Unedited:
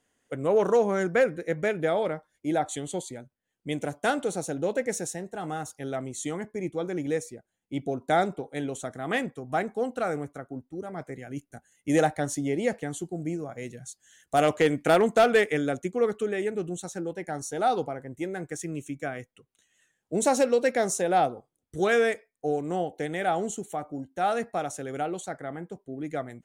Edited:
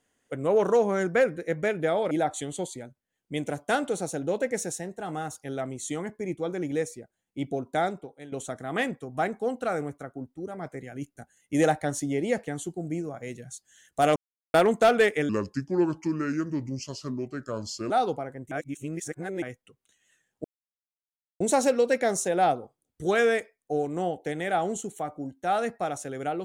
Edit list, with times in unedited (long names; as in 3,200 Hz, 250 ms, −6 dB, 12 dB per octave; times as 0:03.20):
0:02.11–0:02.46: remove
0:07.87–0:08.67: fade out, to −15 dB
0:14.51–0:14.89: silence
0:15.64–0:17.60: play speed 75%
0:18.21–0:19.12: reverse
0:20.14: splice in silence 0.96 s